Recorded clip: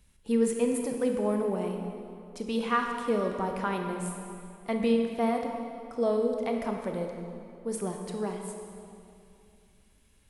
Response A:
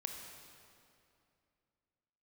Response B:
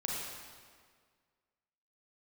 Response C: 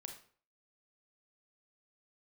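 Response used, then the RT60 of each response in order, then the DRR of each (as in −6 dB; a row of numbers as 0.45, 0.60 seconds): A; 2.6, 1.8, 0.50 seconds; 3.0, −3.5, 3.5 decibels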